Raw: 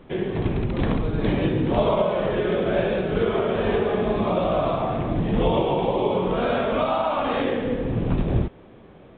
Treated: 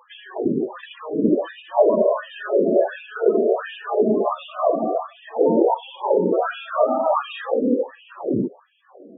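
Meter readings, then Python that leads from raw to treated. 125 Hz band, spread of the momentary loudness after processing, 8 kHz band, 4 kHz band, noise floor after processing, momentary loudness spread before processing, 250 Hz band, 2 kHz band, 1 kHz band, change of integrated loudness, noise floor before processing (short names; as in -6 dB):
-12.5 dB, 9 LU, n/a, -4.0 dB, -51 dBFS, 4 LU, +1.0 dB, -2.0 dB, +1.5 dB, +2.0 dB, -47 dBFS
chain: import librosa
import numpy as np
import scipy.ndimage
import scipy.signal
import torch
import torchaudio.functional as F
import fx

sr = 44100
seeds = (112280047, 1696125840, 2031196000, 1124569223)

y = fx.peak_eq(x, sr, hz=2200.0, db=-11.5, octaves=0.28)
y = fx.filter_lfo_highpass(y, sr, shape='sine', hz=1.4, low_hz=240.0, high_hz=2600.0, q=2.6)
y = fx.spec_topn(y, sr, count=16)
y = y * 10.0 ** (1.5 / 20.0)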